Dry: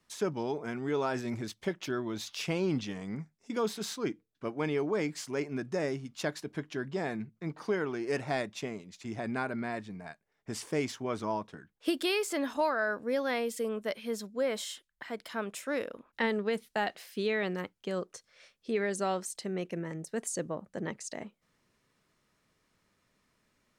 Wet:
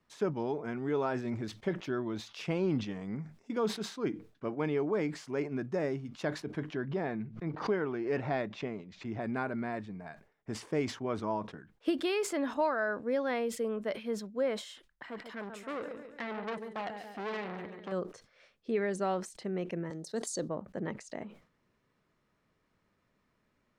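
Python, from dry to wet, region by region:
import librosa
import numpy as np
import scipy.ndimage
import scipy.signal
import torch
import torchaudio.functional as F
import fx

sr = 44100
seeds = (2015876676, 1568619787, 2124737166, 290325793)

y = fx.chain(x, sr, fx.lowpass(hz=4600.0, slope=12),
    fx.pre_swell(db_per_s=120.0), at=(6.73, 9.21))
y = fx.chain(y, sr, fx.echo_feedback(ms=140, feedback_pct=51, wet_db=-11.5),
    fx.transformer_sat(knee_hz=2700.0), at=(14.88, 17.92))
y = fx.chain(y, sr, fx.highpass(hz=180.0, slope=12),
    fx.high_shelf_res(hz=3200.0, db=8.0, q=3.0), at=(19.9, 20.49))
y = fx.lowpass(y, sr, hz=1800.0, slope=6)
y = fx.sustainer(y, sr, db_per_s=140.0)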